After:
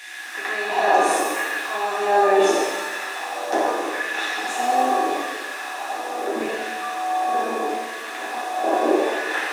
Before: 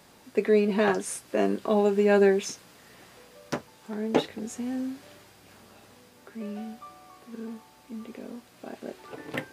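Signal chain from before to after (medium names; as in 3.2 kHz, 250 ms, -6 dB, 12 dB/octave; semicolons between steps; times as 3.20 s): spectral levelling over time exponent 0.6; peak limiter -16.5 dBFS, peak gain reduction 10 dB; LFO high-pass saw down 0.78 Hz 380–2200 Hz; small resonant body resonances 320/750/1700/3500 Hz, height 14 dB, ringing for 60 ms; pitch-shifted reverb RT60 1.4 s, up +7 st, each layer -8 dB, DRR -5 dB; trim -2 dB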